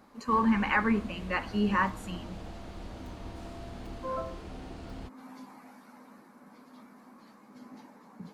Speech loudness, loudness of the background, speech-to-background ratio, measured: −30.0 LKFS, −45.0 LKFS, 15.0 dB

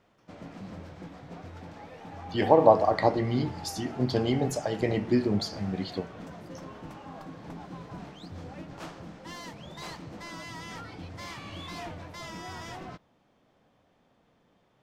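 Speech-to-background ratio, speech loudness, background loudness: 16.0 dB, −26.5 LKFS, −42.5 LKFS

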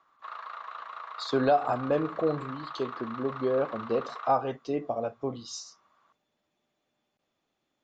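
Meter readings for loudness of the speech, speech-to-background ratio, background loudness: −30.0 LKFS, 11.0 dB, −41.0 LKFS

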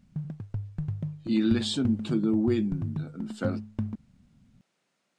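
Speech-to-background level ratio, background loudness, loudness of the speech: 7.5 dB, −35.5 LKFS, −28.0 LKFS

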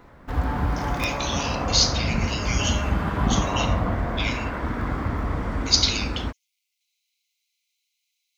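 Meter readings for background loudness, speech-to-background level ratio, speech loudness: −26.5 LKFS, 1.0 dB, −25.5 LKFS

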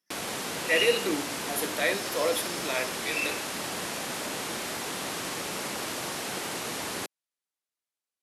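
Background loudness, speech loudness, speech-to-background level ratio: −32.5 LKFS, −28.5 LKFS, 4.0 dB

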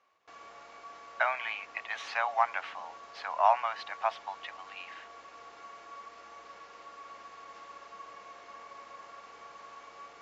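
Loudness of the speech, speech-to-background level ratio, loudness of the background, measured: −31.5 LKFS, 17.5 dB, −49.0 LKFS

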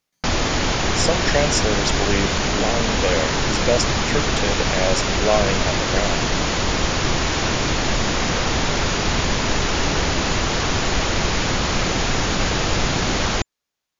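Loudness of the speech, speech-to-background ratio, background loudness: −24.0 LKFS, −3.5 dB, −20.5 LKFS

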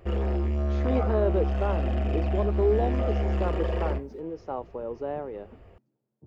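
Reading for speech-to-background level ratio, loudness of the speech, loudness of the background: −3.5 dB, −31.5 LKFS, −28.0 LKFS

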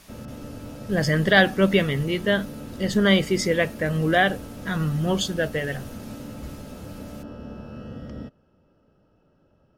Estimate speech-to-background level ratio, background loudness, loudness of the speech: 16.0 dB, −38.5 LKFS, −22.5 LKFS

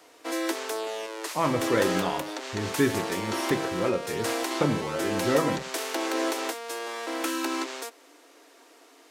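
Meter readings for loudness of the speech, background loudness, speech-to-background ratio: −29.5 LKFS, −31.0 LKFS, 1.5 dB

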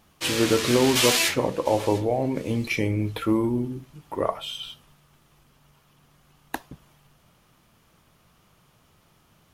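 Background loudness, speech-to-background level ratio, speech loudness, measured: −23.5 LKFS, −2.0 dB, −25.5 LKFS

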